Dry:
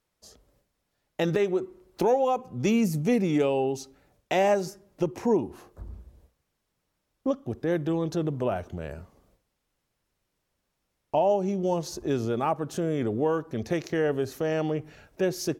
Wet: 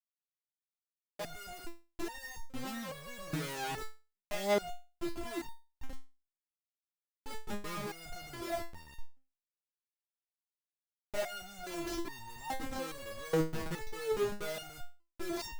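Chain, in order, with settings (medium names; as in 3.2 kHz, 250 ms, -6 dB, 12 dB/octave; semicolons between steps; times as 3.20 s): bit crusher 8-bit; Schmitt trigger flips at -35 dBFS; resonator arpeggio 2.4 Hz 160–920 Hz; trim +6 dB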